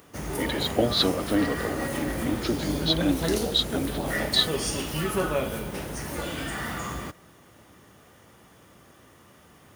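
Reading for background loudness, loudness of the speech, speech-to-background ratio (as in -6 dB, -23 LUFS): -30.0 LUFS, -27.0 LUFS, 3.0 dB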